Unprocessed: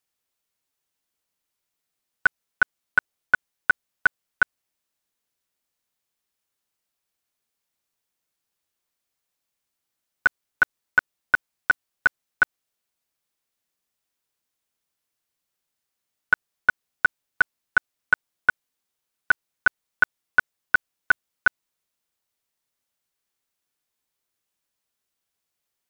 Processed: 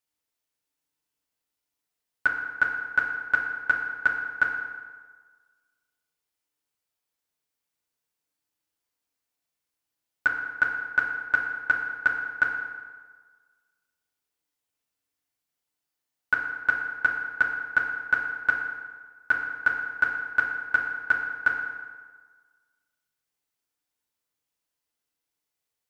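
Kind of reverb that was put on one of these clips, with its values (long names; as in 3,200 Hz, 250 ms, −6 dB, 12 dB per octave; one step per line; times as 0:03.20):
feedback delay network reverb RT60 1.5 s, low-frequency decay 0.9×, high-frequency decay 0.7×, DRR 0 dB
level −6 dB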